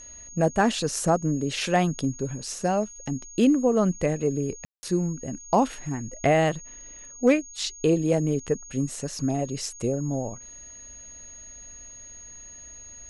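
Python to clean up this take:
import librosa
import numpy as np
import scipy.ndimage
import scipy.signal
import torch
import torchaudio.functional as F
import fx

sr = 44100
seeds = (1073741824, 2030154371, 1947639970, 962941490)

y = fx.fix_declip(x, sr, threshold_db=-11.0)
y = fx.notch(y, sr, hz=6600.0, q=30.0)
y = fx.fix_ambience(y, sr, seeds[0], print_start_s=10.39, print_end_s=10.89, start_s=4.65, end_s=4.83)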